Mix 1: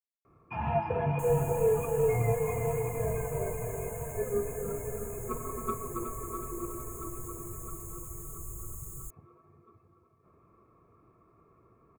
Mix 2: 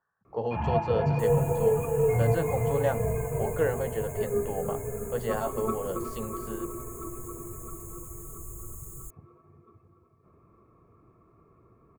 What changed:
speech: unmuted; first sound: add low shelf 410 Hz +5 dB

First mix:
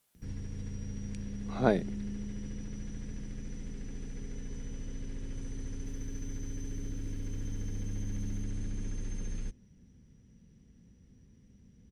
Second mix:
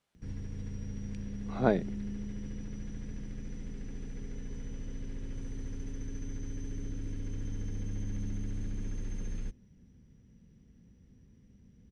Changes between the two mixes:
speech: add air absorption 57 m; master: add high shelf 5800 Hz -8.5 dB

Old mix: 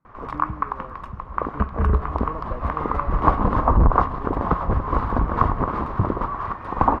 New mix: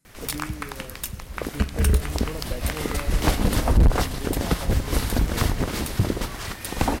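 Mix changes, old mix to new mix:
speech: send on; master: remove synth low-pass 1100 Hz, resonance Q 6.7

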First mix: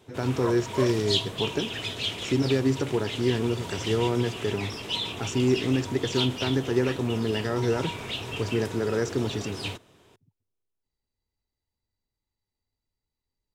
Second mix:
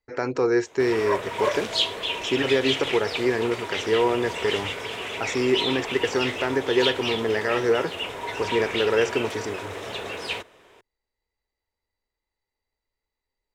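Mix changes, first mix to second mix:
background: entry +0.65 s; master: add graphic EQ 125/250/500/1000/2000 Hz -9/-3/+7/+4/+9 dB

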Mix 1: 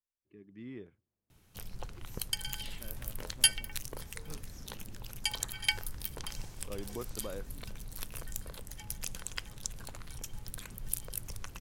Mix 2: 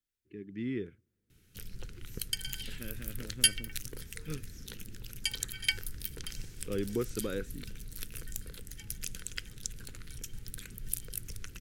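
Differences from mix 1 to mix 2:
speech +10.0 dB; master: add band shelf 810 Hz -15 dB 1.2 oct

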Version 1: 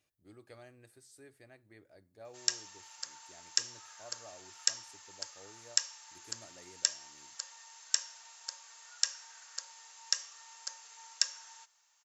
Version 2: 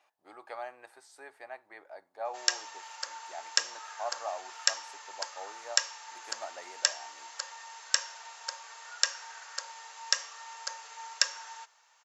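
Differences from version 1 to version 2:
speech: add resonant high-pass 850 Hz, resonance Q 3.8; master: remove pre-emphasis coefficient 0.8

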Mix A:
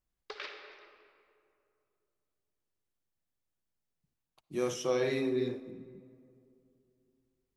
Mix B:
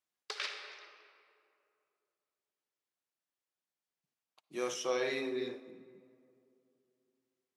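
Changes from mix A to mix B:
background: remove air absorption 200 m; master: add weighting filter A

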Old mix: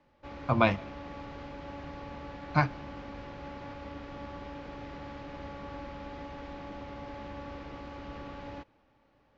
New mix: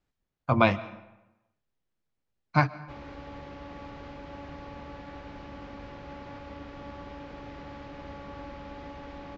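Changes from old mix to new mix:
speech: send +11.5 dB; background: entry +2.65 s

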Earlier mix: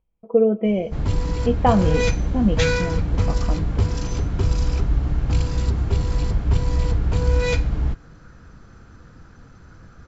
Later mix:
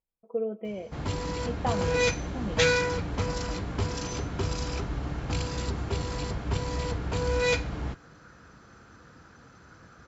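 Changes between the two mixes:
speech -11.0 dB; first sound: add HPF 62 Hz; master: add low shelf 240 Hz -10.5 dB

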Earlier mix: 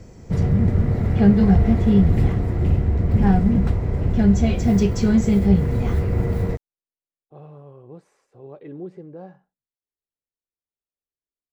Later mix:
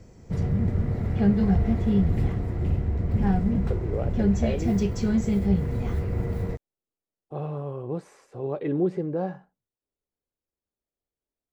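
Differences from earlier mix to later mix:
speech +10.5 dB; background -6.5 dB

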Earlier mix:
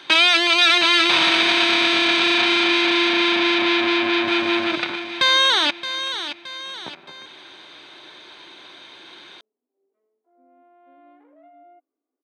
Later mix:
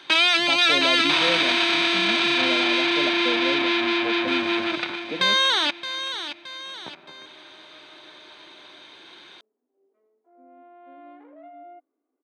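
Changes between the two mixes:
speech: unmuted; first sound -3.5 dB; second sound +5.5 dB

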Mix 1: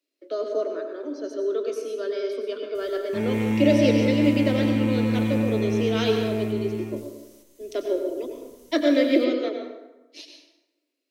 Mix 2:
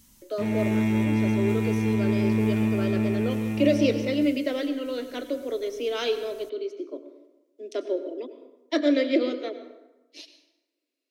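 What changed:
speech: send -8.5 dB; background: entry -2.75 s

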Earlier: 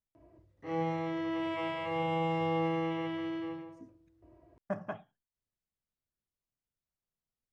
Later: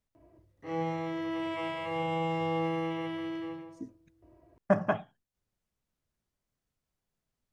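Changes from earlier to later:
speech +11.0 dB; background: remove air absorption 58 m

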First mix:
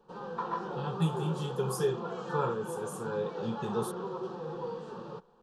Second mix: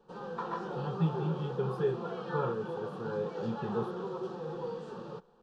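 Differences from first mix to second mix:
speech: add air absorption 430 m; master: add bell 1000 Hz -4 dB 0.36 oct

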